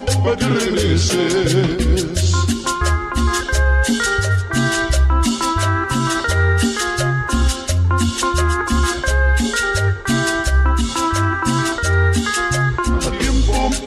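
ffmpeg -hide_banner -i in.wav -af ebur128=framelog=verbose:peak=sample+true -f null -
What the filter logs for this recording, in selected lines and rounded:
Integrated loudness:
  I:         -17.1 LUFS
  Threshold: -27.1 LUFS
Loudness range:
  LRA:         0.5 LU
  Threshold: -37.2 LUFS
  LRA low:   -17.4 LUFS
  LRA high:  -16.9 LUFS
Sample peak:
  Peak:       -4.9 dBFS
True peak:
  Peak:       -4.8 dBFS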